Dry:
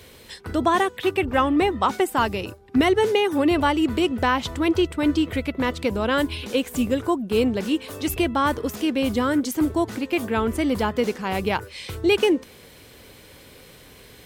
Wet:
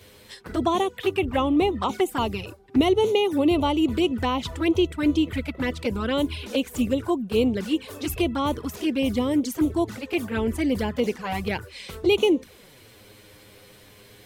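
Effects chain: touch-sensitive flanger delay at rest 11.7 ms, full sweep at -17.5 dBFS

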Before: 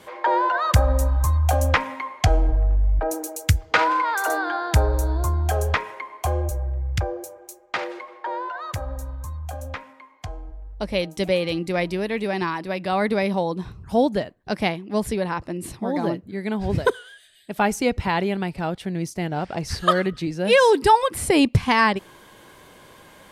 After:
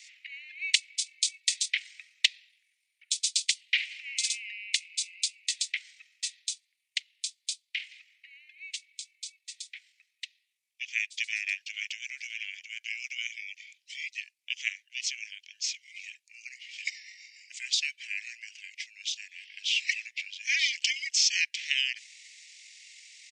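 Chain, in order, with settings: pitch shift -9 st; steep high-pass 2.1 kHz 72 dB/octave; trim +7.5 dB

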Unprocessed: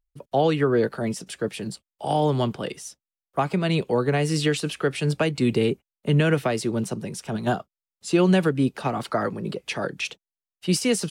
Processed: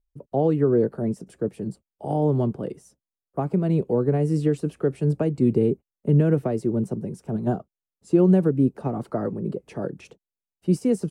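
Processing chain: FFT filter 400 Hz 0 dB, 3.5 kHz -25 dB, 8.1 kHz -16 dB; trim +2 dB

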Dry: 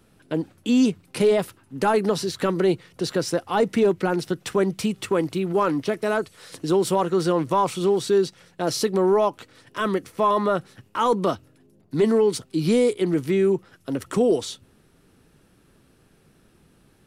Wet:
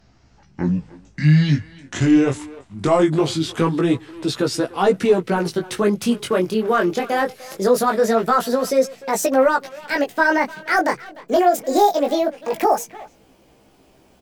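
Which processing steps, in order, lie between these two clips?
gliding tape speed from 50% -> 190%; speakerphone echo 300 ms, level -17 dB; chorus 0.22 Hz, delay 15 ms, depth 7.7 ms; trim +6.5 dB

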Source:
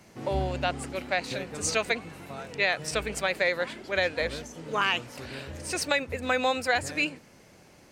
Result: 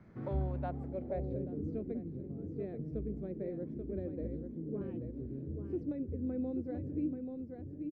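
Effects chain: amplifier tone stack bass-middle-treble 10-0-1; on a send: delay 834 ms -7.5 dB; on the sum: low-pass sweep 1.3 kHz -> 340 Hz, 0.29–1.66 s; in parallel at -1 dB: compression, threshold -54 dBFS, peak gain reduction 17.5 dB; on the sum: bass shelf 94 Hz -12 dB; band-stop 2.8 kHz, Q 6.7; trim +12 dB

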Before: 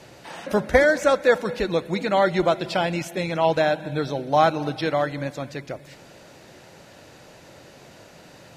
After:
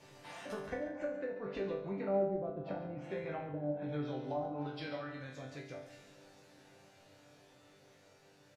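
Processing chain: Doppler pass-by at 2.59 s, 8 m/s, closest 6.3 m; low-pass that closes with the level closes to 370 Hz, closed at -20.5 dBFS; compression 2:1, threshold -43 dBFS, peak gain reduction 12.5 dB; chord resonator G2 sus4, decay 0.54 s; delay 140 ms -11 dB; trim +16 dB

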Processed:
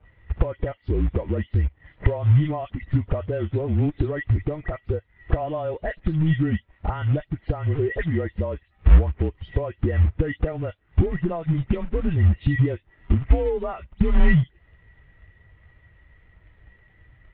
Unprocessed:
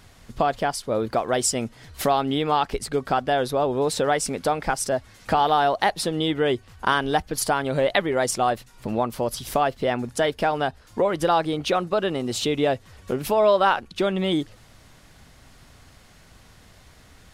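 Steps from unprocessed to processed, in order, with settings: delay that grows with frequency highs late, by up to 162 ms; compression 5:1, threshold -32 dBFS, peak gain reduction 15.5 dB; small resonant body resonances 200/2100 Hz, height 18 dB, ringing for 35 ms; companded quantiser 4-bit; mistuned SSB -160 Hz 210–3500 Hz; spectral contrast expander 1.5:1; trim +6 dB

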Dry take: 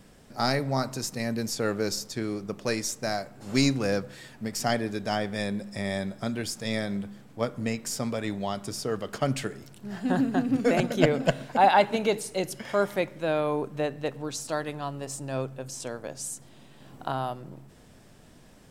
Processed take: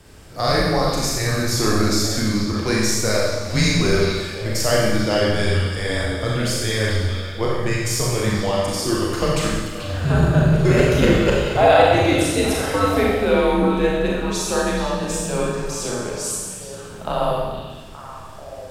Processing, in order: in parallel at +3 dB: peak limiter -16.5 dBFS, peak gain reduction 11 dB; on the sum: frequency shift -110 Hz; repeats whose band climbs or falls 437 ms, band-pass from 3.4 kHz, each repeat -1.4 oct, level -6 dB; Schroeder reverb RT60 1.3 s, combs from 29 ms, DRR -4 dB; trim -2 dB

